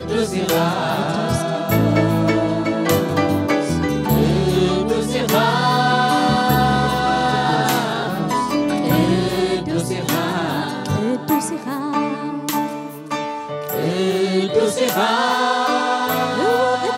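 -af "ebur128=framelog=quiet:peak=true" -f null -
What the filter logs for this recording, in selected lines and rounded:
Integrated loudness:
  I:         -18.6 LUFS
  Threshold: -28.6 LUFS
Loudness range:
  LRA:         5.2 LU
  Threshold: -38.7 LUFS
  LRA low:   -22.0 LUFS
  LRA high:  -16.8 LUFS
True peak:
  Peak:       -2.3 dBFS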